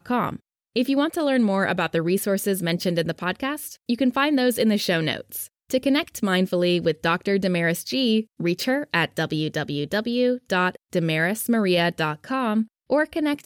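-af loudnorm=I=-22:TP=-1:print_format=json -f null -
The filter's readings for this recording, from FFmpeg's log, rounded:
"input_i" : "-23.1",
"input_tp" : "-8.0",
"input_lra" : "0.9",
"input_thresh" : "-33.2",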